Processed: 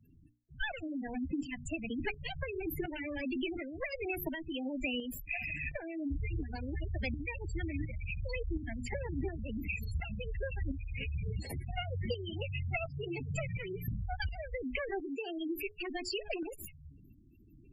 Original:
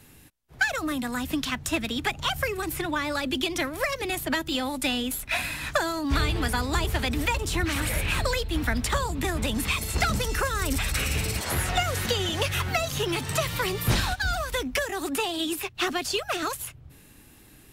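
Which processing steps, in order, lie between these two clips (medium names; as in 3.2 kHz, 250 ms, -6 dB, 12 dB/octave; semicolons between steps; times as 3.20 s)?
comb filter that takes the minimum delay 0.41 ms; hum notches 60/120/180/240/300/360/420 Hz; spectral gate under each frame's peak -10 dB strong; compression 5:1, threshold -31 dBFS, peak gain reduction 9.5 dB; tremolo saw up 1.4 Hz, depth 55%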